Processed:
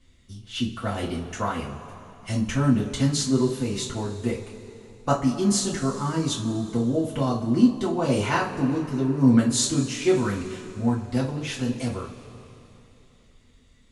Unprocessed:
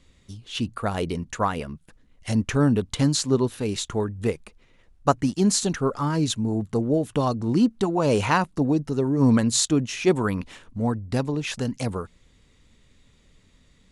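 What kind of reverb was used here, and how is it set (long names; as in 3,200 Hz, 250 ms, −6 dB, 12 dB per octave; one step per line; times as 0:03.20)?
coupled-rooms reverb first 0.27 s, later 3.2 s, from −20 dB, DRR −6 dB
level −8.5 dB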